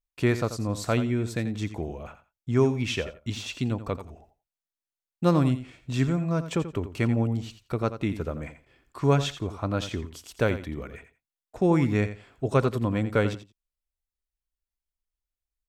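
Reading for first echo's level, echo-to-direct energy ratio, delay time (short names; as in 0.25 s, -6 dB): -12.0 dB, -12.0 dB, 86 ms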